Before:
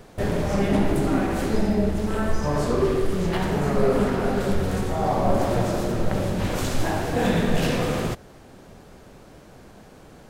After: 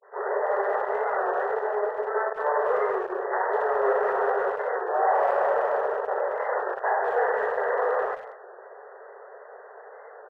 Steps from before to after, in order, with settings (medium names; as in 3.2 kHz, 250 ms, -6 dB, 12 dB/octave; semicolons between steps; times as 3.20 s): tape start-up on the opening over 0.31 s; dynamic bell 880 Hz, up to +4 dB, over -41 dBFS, Q 4.4; saturation -23 dBFS, distortion -9 dB; brick-wall FIR band-pass 390–2000 Hz; speakerphone echo 200 ms, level -15 dB; on a send at -22 dB: reverberation RT60 0.25 s, pre-delay 70 ms; on the sum: warped record 33 1/3 rpm, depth 100 cents; trim +6.5 dB